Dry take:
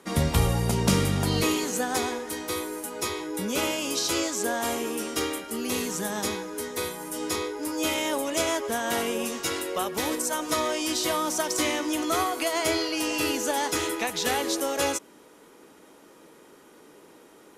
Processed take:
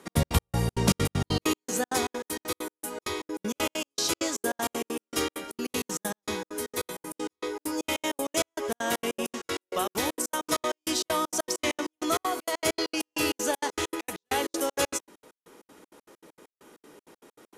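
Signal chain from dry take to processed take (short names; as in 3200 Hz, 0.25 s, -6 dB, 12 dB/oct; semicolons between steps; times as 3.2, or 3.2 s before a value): step gate "x.x.x..xx.xx.x." 196 bpm -60 dB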